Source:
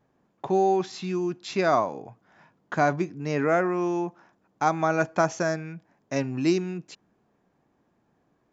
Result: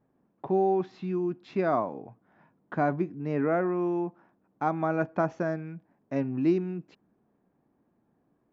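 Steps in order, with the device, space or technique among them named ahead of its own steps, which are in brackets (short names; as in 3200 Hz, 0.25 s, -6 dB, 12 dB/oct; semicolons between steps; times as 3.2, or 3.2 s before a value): phone in a pocket (LPF 3500 Hz 12 dB/oct; bell 250 Hz +4.5 dB 1.2 oct; high shelf 2300 Hz -10.5 dB); gain -4 dB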